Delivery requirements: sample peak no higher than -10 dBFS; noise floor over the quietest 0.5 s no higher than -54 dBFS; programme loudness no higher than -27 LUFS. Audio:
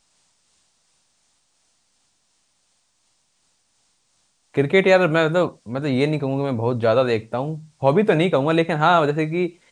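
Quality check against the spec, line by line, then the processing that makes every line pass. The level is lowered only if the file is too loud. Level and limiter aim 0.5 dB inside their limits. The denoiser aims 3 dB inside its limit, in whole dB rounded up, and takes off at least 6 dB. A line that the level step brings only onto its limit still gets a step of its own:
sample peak -3.5 dBFS: fail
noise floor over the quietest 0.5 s -66 dBFS: pass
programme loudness -19.5 LUFS: fail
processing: trim -8 dB

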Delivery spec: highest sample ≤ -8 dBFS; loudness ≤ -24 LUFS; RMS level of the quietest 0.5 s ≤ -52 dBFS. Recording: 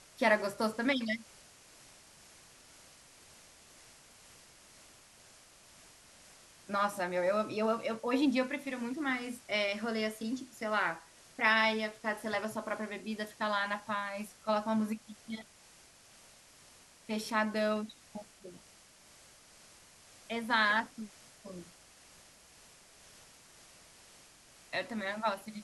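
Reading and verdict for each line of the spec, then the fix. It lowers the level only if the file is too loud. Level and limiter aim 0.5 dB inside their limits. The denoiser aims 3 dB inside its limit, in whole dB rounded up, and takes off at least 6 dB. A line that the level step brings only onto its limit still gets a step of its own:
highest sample -14.0 dBFS: pass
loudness -33.5 LUFS: pass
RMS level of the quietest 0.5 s -60 dBFS: pass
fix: none needed

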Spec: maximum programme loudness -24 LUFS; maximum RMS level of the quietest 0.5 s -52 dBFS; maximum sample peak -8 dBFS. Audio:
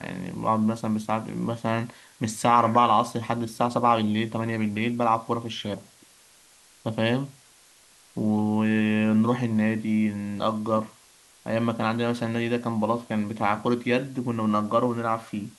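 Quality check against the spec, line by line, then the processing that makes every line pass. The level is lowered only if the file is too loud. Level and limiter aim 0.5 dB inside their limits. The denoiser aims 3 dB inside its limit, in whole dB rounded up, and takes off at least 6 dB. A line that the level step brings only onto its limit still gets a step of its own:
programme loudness -25.5 LUFS: pass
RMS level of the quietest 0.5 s -56 dBFS: pass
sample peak -6.5 dBFS: fail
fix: peak limiter -8.5 dBFS

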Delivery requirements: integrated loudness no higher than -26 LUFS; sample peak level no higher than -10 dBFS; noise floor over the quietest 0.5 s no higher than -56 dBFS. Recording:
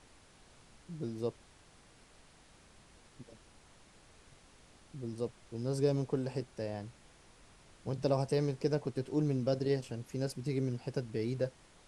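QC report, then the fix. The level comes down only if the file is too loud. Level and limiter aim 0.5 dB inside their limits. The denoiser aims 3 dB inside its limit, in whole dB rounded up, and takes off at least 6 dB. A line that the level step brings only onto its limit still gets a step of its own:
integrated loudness -36.0 LUFS: pass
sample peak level -17.5 dBFS: pass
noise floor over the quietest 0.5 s -61 dBFS: pass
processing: none needed

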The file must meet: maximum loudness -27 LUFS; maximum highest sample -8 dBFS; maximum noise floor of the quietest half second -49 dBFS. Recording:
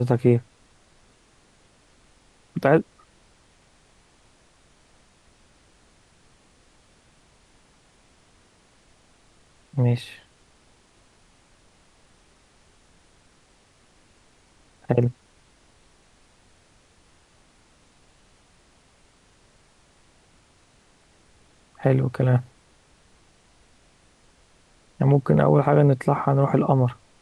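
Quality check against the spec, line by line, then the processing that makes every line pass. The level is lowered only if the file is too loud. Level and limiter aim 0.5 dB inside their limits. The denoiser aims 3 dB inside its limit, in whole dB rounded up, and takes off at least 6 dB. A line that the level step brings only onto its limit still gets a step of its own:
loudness -21.5 LUFS: fail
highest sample -5.0 dBFS: fail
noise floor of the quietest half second -59 dBFS: pass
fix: trim -6 dB

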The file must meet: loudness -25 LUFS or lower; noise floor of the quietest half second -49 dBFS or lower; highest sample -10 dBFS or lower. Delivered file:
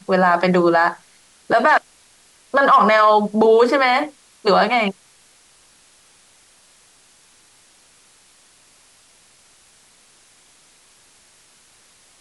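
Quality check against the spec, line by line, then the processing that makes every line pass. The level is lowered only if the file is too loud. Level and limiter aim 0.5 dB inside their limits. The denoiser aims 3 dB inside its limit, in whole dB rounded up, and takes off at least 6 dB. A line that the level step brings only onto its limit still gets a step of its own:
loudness -16.0 LUFS: fail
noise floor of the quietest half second -53 dBFS: pass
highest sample -5.0 dBFS: fail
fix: trim -9.5 dB

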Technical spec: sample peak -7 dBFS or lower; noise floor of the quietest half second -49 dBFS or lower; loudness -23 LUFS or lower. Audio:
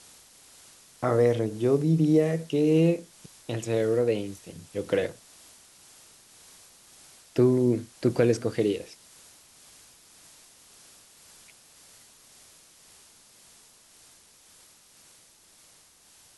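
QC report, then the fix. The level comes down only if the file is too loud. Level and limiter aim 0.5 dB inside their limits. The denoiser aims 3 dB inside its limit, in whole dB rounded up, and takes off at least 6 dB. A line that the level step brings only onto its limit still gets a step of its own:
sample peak -9.0 dBFS: pass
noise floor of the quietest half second -57 dBFS: pass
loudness -25.5 LUFS: pass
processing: none needed

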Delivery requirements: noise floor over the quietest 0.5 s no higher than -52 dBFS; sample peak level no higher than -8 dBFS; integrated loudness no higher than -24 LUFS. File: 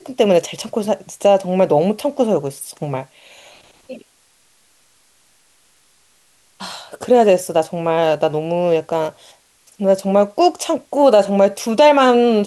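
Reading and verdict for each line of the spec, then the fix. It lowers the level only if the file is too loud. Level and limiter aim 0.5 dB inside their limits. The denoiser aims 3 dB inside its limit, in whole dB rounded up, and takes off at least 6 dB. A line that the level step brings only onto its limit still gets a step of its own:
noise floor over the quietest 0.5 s -56 dBFS: pass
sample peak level -2.5 dBFS: fail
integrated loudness -16.0 LUFS: fail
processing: trim -8.5 dB

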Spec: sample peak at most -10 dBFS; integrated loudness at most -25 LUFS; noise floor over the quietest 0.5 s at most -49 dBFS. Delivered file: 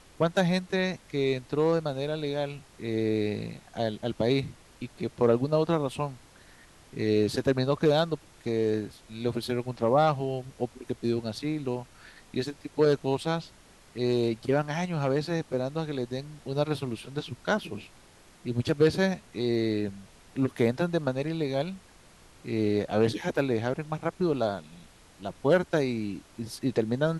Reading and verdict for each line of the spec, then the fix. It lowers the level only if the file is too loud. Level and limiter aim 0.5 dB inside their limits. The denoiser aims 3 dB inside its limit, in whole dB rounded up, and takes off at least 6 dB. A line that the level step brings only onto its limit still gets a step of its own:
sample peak -11.0 dBFS: pass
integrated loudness -29.0 LUFS: pass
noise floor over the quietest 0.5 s -55 dBFS: pass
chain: none needed

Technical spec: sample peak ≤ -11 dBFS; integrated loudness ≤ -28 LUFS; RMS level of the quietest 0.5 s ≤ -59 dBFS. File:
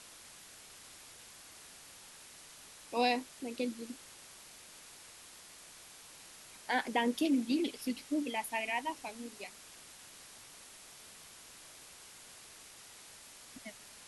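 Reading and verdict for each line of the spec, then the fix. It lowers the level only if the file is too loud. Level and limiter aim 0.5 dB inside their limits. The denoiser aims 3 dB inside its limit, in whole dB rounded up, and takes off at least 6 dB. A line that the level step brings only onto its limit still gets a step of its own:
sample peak -17.0 dBFS: pass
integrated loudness -35.5 LUFS: pass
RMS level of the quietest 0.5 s -54 dBFS: fail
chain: noise reduction 8 dB, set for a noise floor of -54 dBFS

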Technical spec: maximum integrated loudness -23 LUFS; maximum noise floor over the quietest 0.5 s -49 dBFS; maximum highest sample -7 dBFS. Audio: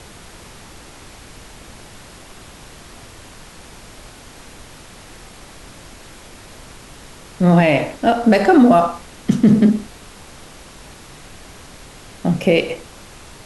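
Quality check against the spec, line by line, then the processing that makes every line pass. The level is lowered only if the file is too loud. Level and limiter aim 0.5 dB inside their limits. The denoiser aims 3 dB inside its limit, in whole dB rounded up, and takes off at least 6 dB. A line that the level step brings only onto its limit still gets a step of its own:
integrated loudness -15.5 LUFS: fail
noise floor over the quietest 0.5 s -40 dBFS: fail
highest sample -3.0 dBFS: fail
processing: noise reduction 6 dB, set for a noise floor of -40 dBFS; trim -8 dB

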